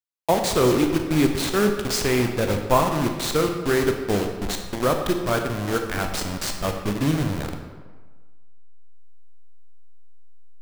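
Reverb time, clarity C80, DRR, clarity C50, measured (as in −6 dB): 1.4 s, 7.5 dB, 4.0 dB, 6.0 dB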